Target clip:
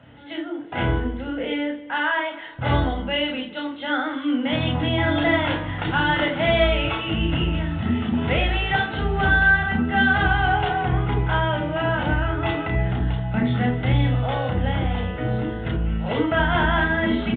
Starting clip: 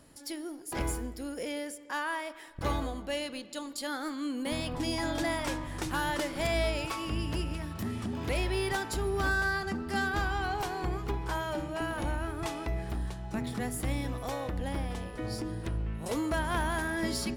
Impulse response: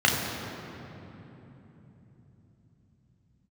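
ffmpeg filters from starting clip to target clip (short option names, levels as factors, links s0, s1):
-filter_complex "[0:a]aresample=8000,aresample=44100,aeval=exprs='0.119*(cos(1*acos(clip(val(0)/0.119,-1,1)))-cos(1*PI/2))+0.00237*(cos(2*acos(clip(val(0)/0.119,-1,1)))-cos(2*PI/2))':c=same[s0];[1:a]atrim=start_sample=2205,atrim=end_sample=3969[s1];[s0][s1]afir=irnorm=-1:irlink=0,volume=0.631"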